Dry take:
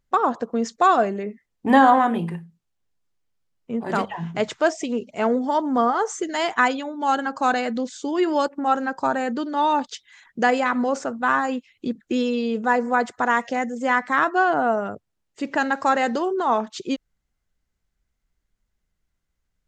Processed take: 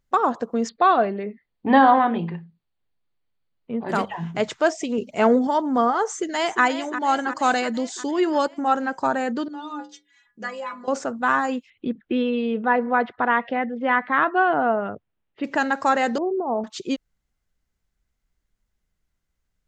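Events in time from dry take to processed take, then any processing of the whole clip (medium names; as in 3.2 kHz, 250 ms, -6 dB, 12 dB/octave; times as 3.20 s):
0.69–3.89 s: Chebyshev low-pass 4.7 kHz, order 10
4.98–5.47 s: gain +4 dB
6.11–6.63 s: echo throw 350 ms, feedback 65%, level -10.5 dB
7.30–8.11 s: treble shelf 4.4 kHz +7.5 dB
9.48–10.88 s: inharmonic resonator 61 Hz, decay 0.65 s, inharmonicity 0.03
11.70–15.44 s: steep low-pass 3.5 kHz
16.18–16.64 s: inverse Chebyshev low-pass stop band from 2.5 kHz, stop band 60 dB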